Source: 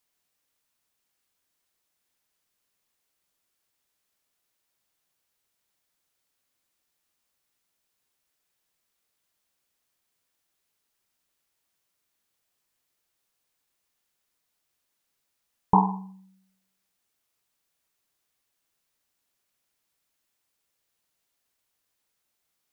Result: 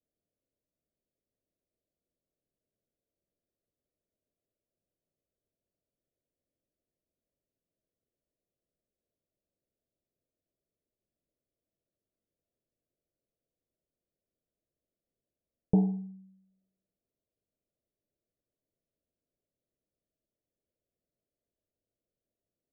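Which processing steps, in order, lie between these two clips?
steep low-pass 660 Hz 72 dB/oct

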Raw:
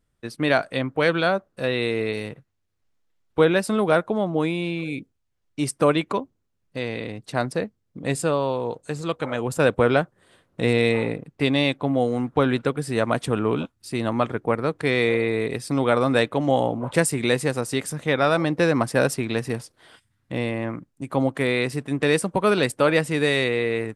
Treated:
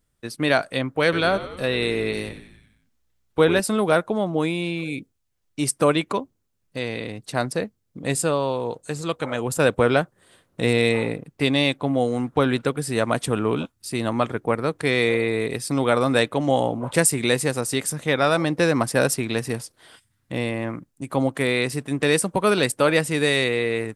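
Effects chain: high shelf 5200 Hz +8.5 dB; 1.03–3.6 frequency-shifting echo 92 ms, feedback 58%, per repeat -62 Hz, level -13 dB

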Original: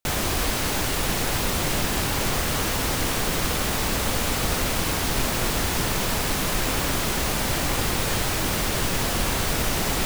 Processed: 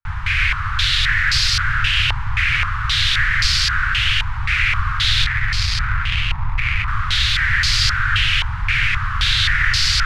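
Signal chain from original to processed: 5.24–6.88 sample-rate reducer 1600 Hz, jitter 20%; Chebyshev band-stop 110–1500 Hz, order 3; echo with dull and thin repeats by turns 0.341 s, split 1400 Hz, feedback 52%, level -5 dB; stepped low-pass 3.8 Hz 920–4700 Hz; gain +7 dB

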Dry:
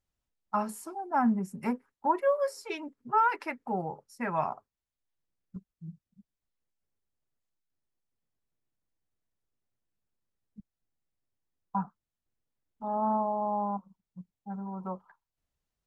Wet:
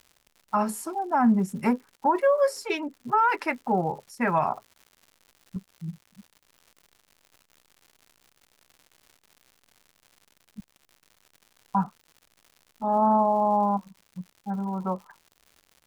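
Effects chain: crackle 160/s -50 dBFS; limiter -21.5 dBFS, peak gain reduction 7 dB; gain +8 dB

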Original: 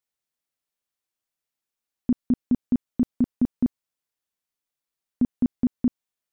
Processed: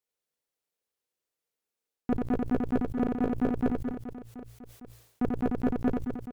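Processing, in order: bell 460 Hz +10.5 dB 0.67 oct; de-hum 57.84 Hz, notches 2; sample leveller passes 2; reverse; compressor, threshold -25 dBFS, peak gain reduction 10 dB; reverse; tube stage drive 22 dB, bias 0.45; reverse bouncing-ball echo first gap 90 ms, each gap 1.5×, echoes 5; sustainer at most 81 dB/s; gain +2 dB

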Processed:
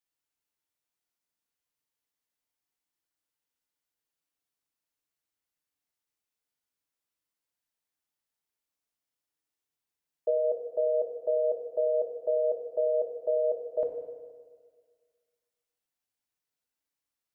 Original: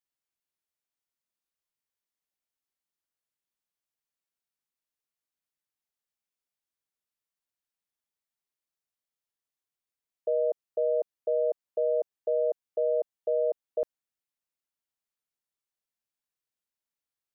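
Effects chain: FDN reverb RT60 1.7 s, low-frequency decay 1×, high-frequency decay 0.75×, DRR 2 dB

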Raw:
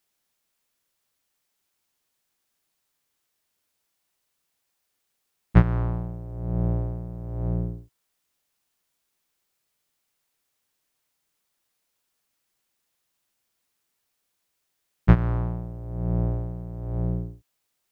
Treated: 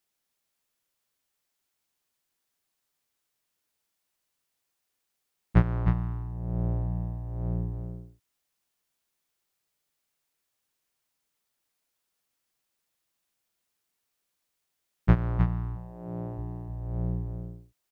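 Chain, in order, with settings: 15.75–16.37 HPF 320 Hz -> 150 Hz 12 dB/oct; echo 0.31 s -7 dB; gain -4.5 dB

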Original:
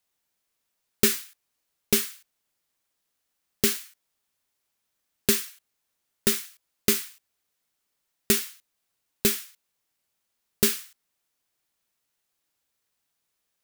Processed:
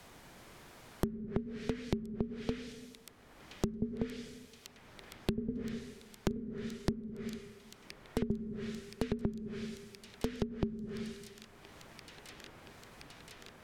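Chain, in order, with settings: plate-style reverb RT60 0.92 s, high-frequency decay 1×, DRR 13 dB; in parallel at +0.5 dB: limiter -16 dBFS, peak gain reduction 10.5 dB; on the sum: echoes that change speed 0.387 s, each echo +1 st, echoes 2, each echo -6 dB; treble ducked by the level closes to 320 Hz, closed at -20.5 dBFS; high shelf 8300 Hz -10.5 dB; thin delay 1.022 s, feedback 79%, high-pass 4700 Hz, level -16 dB; compressor 4:1, threshold -39 dBFS, peak gain reduction 18.5 dB; low shelf 500 Hz +9 dB; notch 2700 Hz, Q 29; three-band squash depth 70%; gain +1.5 dB

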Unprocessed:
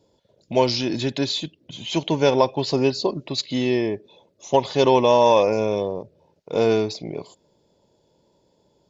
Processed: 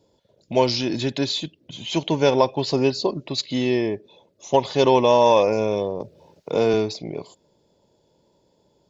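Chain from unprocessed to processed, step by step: 6–6.74 three-band squash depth 40%

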